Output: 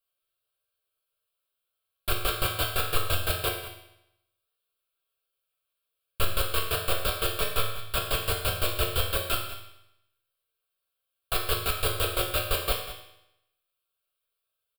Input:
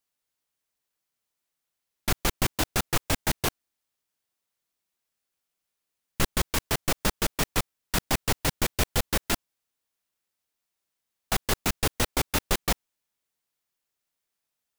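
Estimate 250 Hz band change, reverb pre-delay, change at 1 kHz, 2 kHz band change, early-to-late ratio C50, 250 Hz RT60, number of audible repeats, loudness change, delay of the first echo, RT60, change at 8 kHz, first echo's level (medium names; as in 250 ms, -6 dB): -9.0 dB, 4 ms, -0.5 dB, -1.0 dB, 4.5 dB, 0.85 s, 1, -0.5 dB, 194 ms, 0.85 s, -4.5 dB, -13.0 dB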